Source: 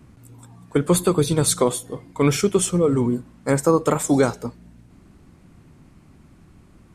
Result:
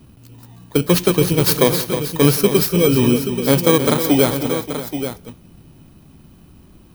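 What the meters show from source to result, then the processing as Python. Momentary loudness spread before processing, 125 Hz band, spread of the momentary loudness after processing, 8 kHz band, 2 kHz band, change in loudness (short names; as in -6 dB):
9 LU, +4.5 dB, 9 LU, +0.5 dB, +7.0 dB, +4.0 dB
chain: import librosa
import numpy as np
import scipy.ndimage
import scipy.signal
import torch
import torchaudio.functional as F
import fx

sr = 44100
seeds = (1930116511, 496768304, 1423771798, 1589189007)

y = fx.bit_reversed(x, sr, seeds[0], block=16)
y = fx.rider(y, sr, range_db=5, speed_s=0.5)
y = fx.echo_multitap(y, sr, ms=(173, 314, 580, 830), db=(-17.5, -10.5, -15.0, -10.0))
y = y * 10.0 ** (4.0 / 20.0)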